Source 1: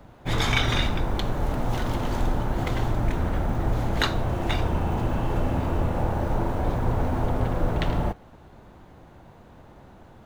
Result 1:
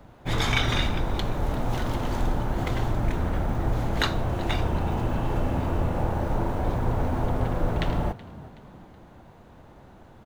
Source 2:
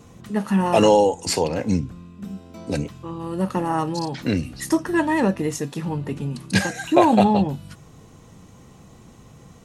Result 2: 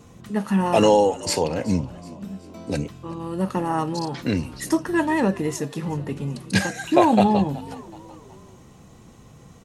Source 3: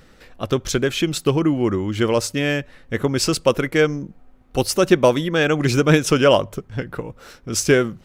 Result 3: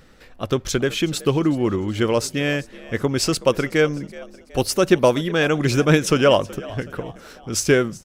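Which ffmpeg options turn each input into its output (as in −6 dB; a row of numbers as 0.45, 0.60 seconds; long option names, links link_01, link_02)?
-filter_complex "[0:a]asplit=4[link_01][link_02][link_03][link_04];[link_02]adelay=374,afreqshift=59,volume=-20dB[link_05];[link_03]adelay=748,afreqshift=118,volume=-26.7dB[link_06];[link_04]adelay=1122,afreqshift=177,volume=-33.5dB[link_07];[link_01][link_05][link_06][link_07]amix=inputs=4:normalize=0,volume=-1dB"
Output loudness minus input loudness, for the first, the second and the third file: −1.0, −1.0, −1.0 LU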